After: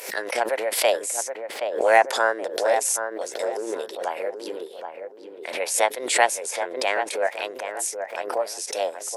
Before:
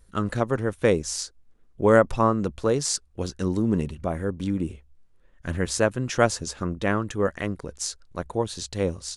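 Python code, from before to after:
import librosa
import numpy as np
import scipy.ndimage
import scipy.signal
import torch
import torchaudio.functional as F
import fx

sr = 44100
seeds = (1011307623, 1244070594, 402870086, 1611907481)

p1 = fx.formant_shift(x, sr, semitones=5)
p2 = scipy.signal.sosfilt(scipy.signal.butter(4, 510.0, 'highpass', fs=sr, output='sos'), p1)
p3 = fx.peak_eq(p2, sr, hz=1200.0, db=-9.0, octaves=0.41)
p4 = p3 + fx.echo_filtered(p3, sr, ms=774, feedback_pct=31, hz=1500.0, wet_db=-6.5, dry=0)
p5 = fx.pre_swell(p4, sr, db_per_s=83.0)
y = p5 * librosa.db_to_amplitude(2.5)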